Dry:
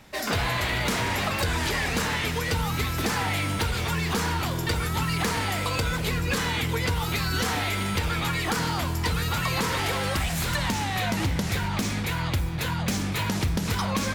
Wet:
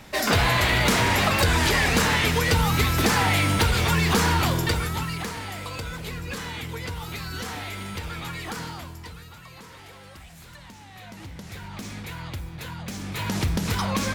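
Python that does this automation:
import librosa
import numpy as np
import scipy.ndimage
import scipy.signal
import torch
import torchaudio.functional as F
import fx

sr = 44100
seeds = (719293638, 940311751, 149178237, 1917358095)

y = fx.gain(x, sr, db=fx.line((4.5, 5.5), (5.34, -7.0), (8.61, -7.0), (9.36, -19.0), (10.78, -19.0), (11.95, -8.0), (12.93, -8.0), (13.38, 1.0)))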